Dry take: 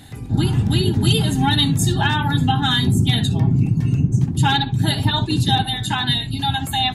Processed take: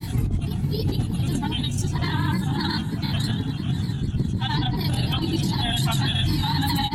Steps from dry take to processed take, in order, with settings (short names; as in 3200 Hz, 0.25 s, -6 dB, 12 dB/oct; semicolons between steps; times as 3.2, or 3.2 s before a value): tone controls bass +8 dB, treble +3 dB; negative-ratio compressor -18 dBFS, ratio -0.5; diffused feedback echo 0.541 s, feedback 45%, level -10 dB; chorus 2.1 Hz, delay 19 ms, depth 4.8 ms; limiter -18 dBFS, peak gain reduction 13 dB; grains, pitch spread up and down by 3 st; reverb RT60 1.0 s, pre-delay 3 ms, DRR 13.5 dB; gain +4 dB